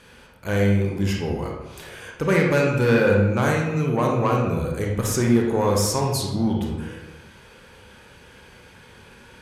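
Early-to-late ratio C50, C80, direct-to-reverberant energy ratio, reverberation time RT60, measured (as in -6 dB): 1.5 dB, 5.0 dB, -1.0 dB, 1.0 s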